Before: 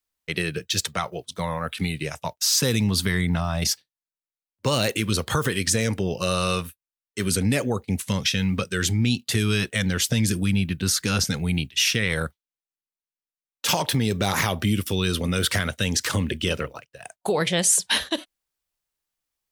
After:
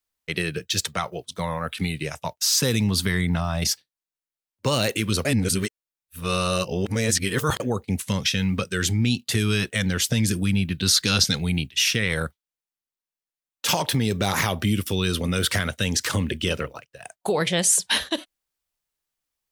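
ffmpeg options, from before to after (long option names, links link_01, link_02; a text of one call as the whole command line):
ffmpeg -i in.wav -filter_complex "[0:a]asettb=1/sr,asplit=3[link_01][link_02][link_03];[link_01]atrim=end=10.744[link_04];[link_02]atrim=start=10.74:end=11.49,asetpts=PTS-STARTPTS,afade=type=in:duration=0.004:curve=qsin,afade=type=out:start_time=0.746:duration=0.004:curve=qsin,equalizer=frequency=3900:width_type=o:width=0.82:gain=10[link_05];[link_03]atrim=start=11.486[link_06];[link_04][link_05]acrossfade=duration=0.004:curve1=hsin:curve2=qsin[link_07];[link_07][link_06]acrossfade=duration=0.004:curve1=qsin:curve2=hsin,asplit=3[link_08][link_09][link_10];[link_08]atrim=end=5.252[link_11];[link_09]atrim=start=5.248:end=7.602,asetpts=PTS-STARTPTS,areverse[link_12];[link_10]atrim=start=7.598[link_13];[link_11][link_12]acrossfade=duration=0.004:curve1=hsin:curve2=hsin[link_14];[link_14][link_13]acrossfade=duration=0.004:curve1=hsin:curve2=hsin" out.wav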